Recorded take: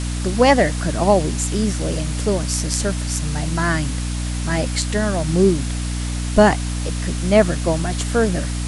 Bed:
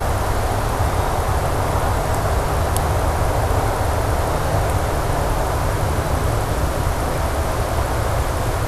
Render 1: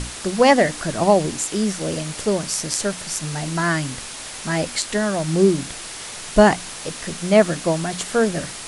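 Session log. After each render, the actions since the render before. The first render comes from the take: hum notches 60/120/180/240/300 Hz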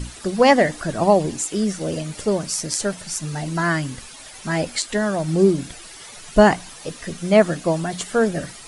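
noise reduction 11 dB, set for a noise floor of -34 dBFS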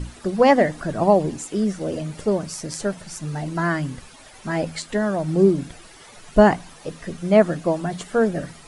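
treble shelf 2.3 kHz -9.5 dB; de-hum 80.76 Hz, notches 3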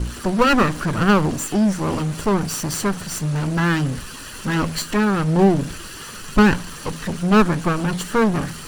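comb filter that takes the minimum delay 0.69 ms; power-law waveshaper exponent 0.7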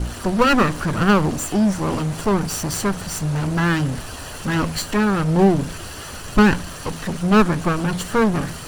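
add bed -18.5 dB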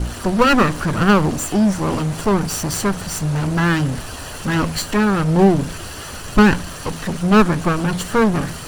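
trim +2 dB

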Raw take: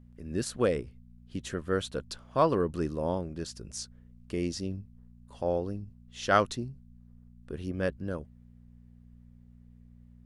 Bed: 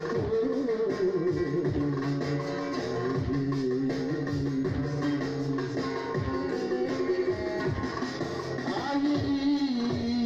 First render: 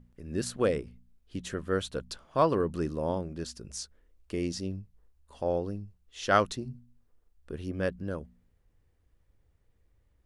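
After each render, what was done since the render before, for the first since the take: de-hum 60 Hz, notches 4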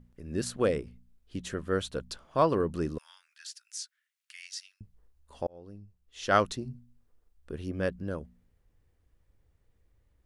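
2.98–4.81 s: steep high-pass 1.5 kHz; 5.47–6.38 s: fade in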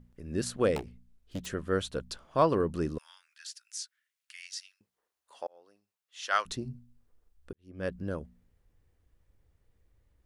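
0.76–1.46 s: self-modulated delay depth 0.71 ms; 4.73–6.45 s: high-pass 480 Hz -> 1.2 kHz; 7.53–7.94 s: fade in quadratic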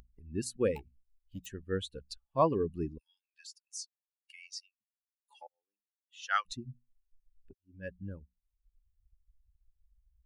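expander on every frequency bin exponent 2; upward compressor, threshold -48 dBFS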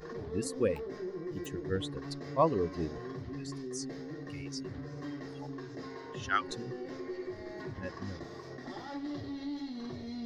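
add bed -12.5 dB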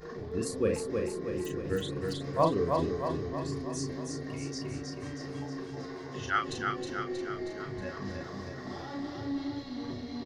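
doubling 36 ms -5 dB; feedback delay 317 ms, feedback 58%, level -4 dB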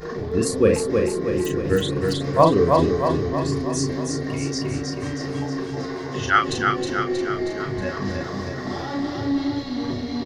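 trim +11.5 dB; peak limiter -3 dBFS, peak gain reduction 2.5 dB

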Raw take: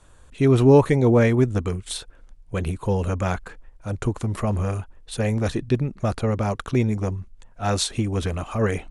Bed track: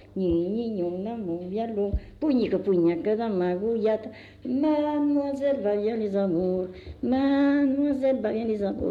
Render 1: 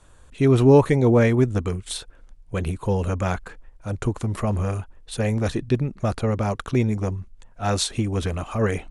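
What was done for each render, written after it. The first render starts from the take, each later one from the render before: no audible change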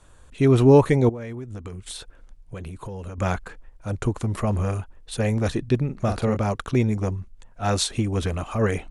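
1.09–3.18 s: compression 8:1, threshold -31 dBFS; 5.85–6.37 s: doubling 41 ms -7 dB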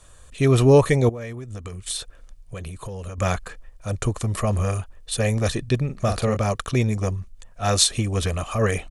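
treble shelf 3 kHz +9 dB; comb 1.7 ms, depth 33%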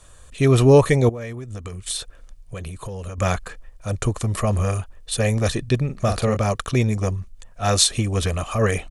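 trim +1.5 dB; peak limiter -3 dBFS, peak gain reduction 1 dB

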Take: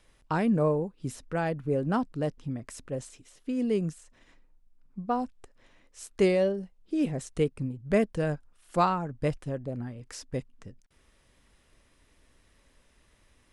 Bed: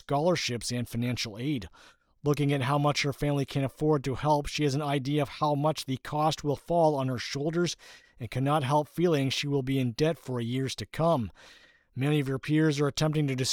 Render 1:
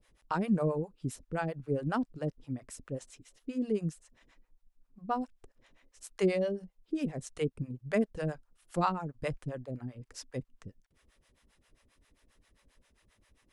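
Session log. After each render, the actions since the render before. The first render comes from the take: harmonic tremolo 7.5 Hz, depth 100%, crossover 520 Hz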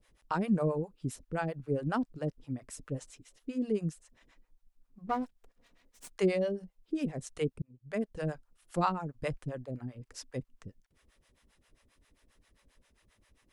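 2.72–3.12 s: comb 6.6 ms, depth 56%; 5.07–6.10 s: comb filter that takes the minimum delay 4.2 ms; 7.62–8.28 s: fade in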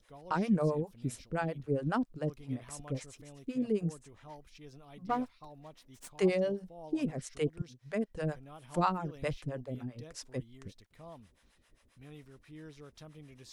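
add bed -25 dB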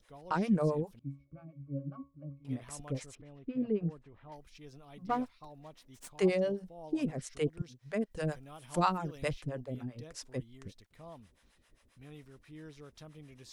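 0.99–2.45 s: pitch-class resonator C#, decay 0.26 s; 3.15–4.32 s: distance through air 390 m; 8.11–9.29 s: treble shelf 3.1 kHz +7 dB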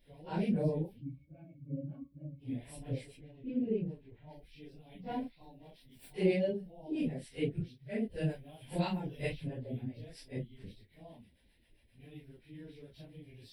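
phase randomisation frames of 100 ms; static phaser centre 2.9 kHz, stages 4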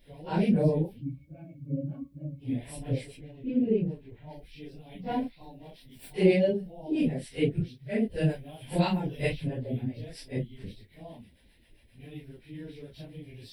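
trim +7.5 dB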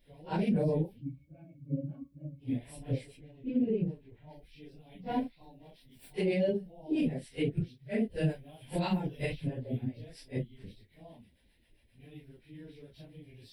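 peak limiter -20.5 dBFS, peak gain reduction 11 dB; upward expansion 1.5:1, over -38 dBFS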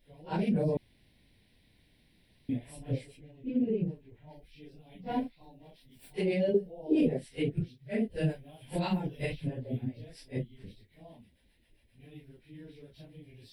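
0.77–2.49 s: room tone; 6.54–7.17 s: peaking EQ 450 Hz +13.5 dB 0.67 oct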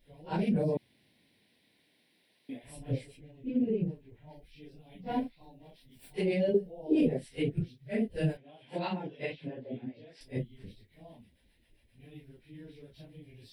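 0.62–2.63 s: high-pass 120 Hz -> 450 Hz; 8.37–10.21 s: band-pass 250–4000 Hz

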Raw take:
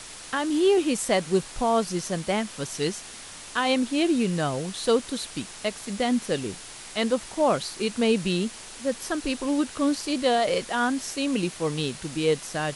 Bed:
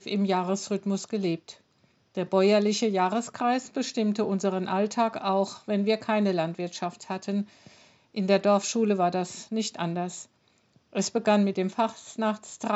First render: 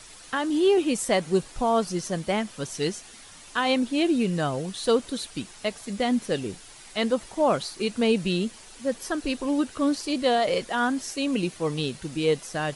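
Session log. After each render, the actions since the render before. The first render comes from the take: noise reduction 8 dB, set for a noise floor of -42 dBFS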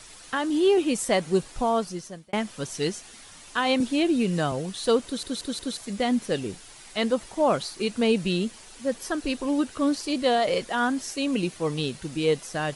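1.63–2.33 s: fade out; 3.80–4.52 s: three bands compressed up and down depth 40%; 5.05 s: stutter in place 0.18 s, 4 plays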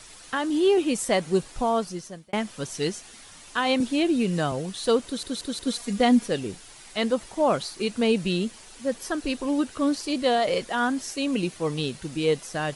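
5.66–6.28 s: comb 4.2 ms, depth 90%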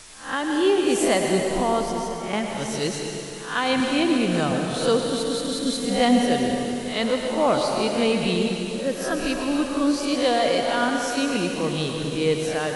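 reverse spectral sustain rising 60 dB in 0.40 s; plate-style reverb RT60 2.9 s, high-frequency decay 0.9×, pre-delay 90 ms, DRR 1.5 dB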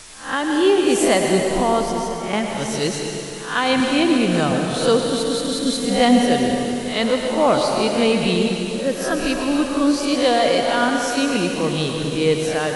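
trim +4 dB

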